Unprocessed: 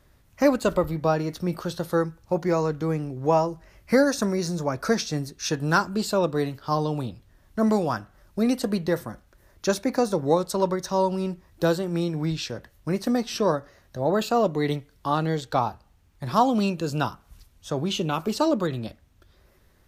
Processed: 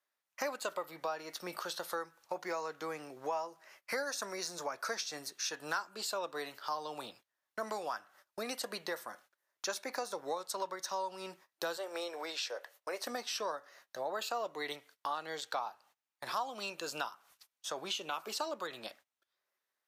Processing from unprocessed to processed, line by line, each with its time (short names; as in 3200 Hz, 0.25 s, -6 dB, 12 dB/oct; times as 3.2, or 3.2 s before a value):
11.77–13.05 resonant high-pass 510 Hz, resonance Q 2.4
whole clip: HPF 800 Hz 12 dB/oct; gate -58 dBFS, range -22 dB; compressor 3:1, threshold -39 dBFS; gain +1.5 dB